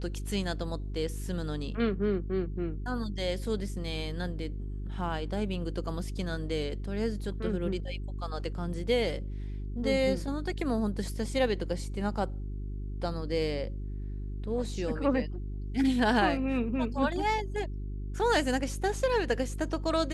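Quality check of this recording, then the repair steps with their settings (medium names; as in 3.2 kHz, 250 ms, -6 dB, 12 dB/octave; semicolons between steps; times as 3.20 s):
hum 50 Hz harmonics 8 -36 dBFS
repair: de-hum 50 Hz, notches 8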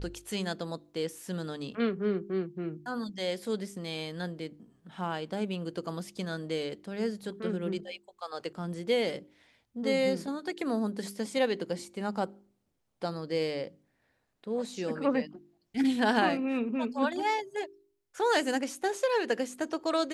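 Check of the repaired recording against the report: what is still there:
nothing left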